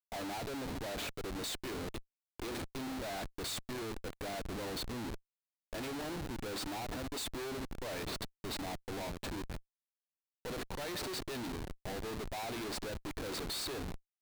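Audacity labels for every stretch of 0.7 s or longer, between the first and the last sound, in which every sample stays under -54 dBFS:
9.600000	10.450000	silence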